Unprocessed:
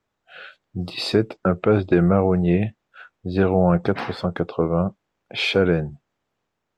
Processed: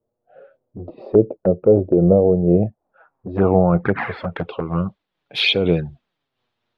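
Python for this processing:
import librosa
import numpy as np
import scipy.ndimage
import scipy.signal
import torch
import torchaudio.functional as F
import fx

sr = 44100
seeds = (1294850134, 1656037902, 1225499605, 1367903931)

y = fx.filter_sweep_lowpass(x, sr, from_hz=540.0, to_hz=3800.0, start_s=2.46, end_s=4.84, q=2.8)
y = fx.env_flanger(y, sr, rest_ms=8.5, full_db=-13.0)
y = fx.am_noise(y, sr, seeds[0], hz=5.7, depth_pct=60)
y = y * librosa.db_to_amplitude(5.0)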